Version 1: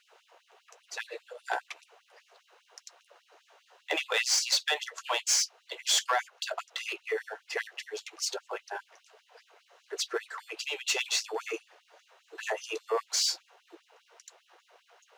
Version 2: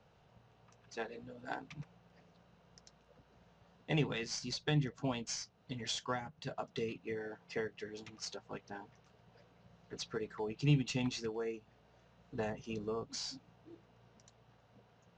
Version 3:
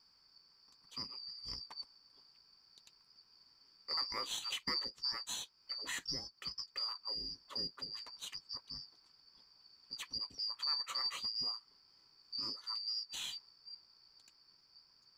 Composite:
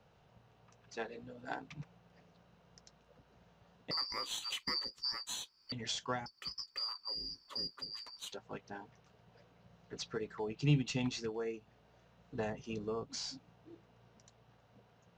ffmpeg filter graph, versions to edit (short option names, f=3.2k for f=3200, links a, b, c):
-filter_complex "[2:a]asplit=2[a][b];[1:a]asplit=3[c][d][e];[c]atrim=end=3.912[f];[a]atrim=start=3.908:end=5.722[g];[d]atrim=start=5.718:end=6.262[h];[b]atrim=start=6.258:end=8.322[i];[e]atrim=start=8.318[j];[f][g]acrossfade=d=0.004:c1=hsin:c2=hsin[k];[k][h]acrossfade=d=0.004:c1=hsin:c2=hsin[l];[l][i]acrossfade=d=0.004:c1=hsin:c2=hsin[m];[m][j]acrossfade=d=0.004:c1=hsin:c2=hsin"